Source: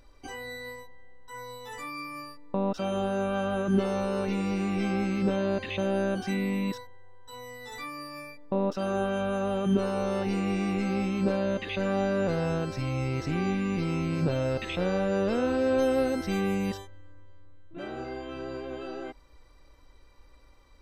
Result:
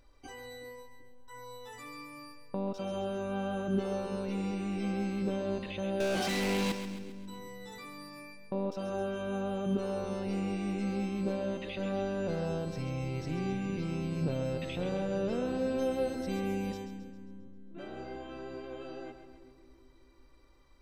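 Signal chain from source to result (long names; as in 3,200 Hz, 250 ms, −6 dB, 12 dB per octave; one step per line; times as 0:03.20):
0:06.00–0:06.72: mid-hump overdrive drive 34 dB, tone 4,500 Hz, clips at −17.5 dBFS
dynamic equaliser 1,500 Hz, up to −5 dB, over −44 dBFS, Q 1
echo with a time of its own for lows and highs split 360 Hz, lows 376 ms, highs 134 ms, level −9 dB
level −6 dB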